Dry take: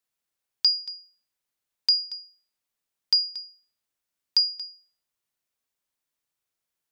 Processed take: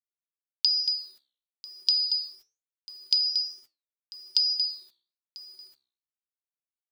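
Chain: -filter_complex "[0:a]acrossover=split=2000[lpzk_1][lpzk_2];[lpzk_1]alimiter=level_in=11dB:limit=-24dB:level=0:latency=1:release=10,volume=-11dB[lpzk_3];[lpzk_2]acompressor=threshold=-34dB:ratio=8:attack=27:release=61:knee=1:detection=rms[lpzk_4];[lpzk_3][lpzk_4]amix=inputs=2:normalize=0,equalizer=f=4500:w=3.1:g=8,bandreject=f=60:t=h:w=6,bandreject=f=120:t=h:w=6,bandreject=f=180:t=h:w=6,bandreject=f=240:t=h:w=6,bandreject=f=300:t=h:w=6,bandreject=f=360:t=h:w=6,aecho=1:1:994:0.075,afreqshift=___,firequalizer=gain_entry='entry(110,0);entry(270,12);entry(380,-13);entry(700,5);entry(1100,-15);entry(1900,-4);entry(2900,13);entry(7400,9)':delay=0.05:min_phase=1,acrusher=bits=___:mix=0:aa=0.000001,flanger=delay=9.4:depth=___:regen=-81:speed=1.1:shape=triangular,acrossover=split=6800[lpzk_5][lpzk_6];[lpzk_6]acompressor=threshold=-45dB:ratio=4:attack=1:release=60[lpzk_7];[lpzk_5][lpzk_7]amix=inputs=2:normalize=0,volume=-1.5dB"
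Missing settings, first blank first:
82, 8, 7.2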